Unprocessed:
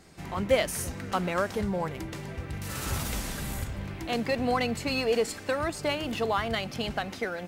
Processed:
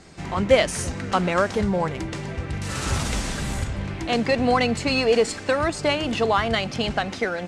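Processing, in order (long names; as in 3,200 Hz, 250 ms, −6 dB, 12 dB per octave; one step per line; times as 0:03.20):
low-pass filter 8,800 Hz 24 dB per octave
level +7 dB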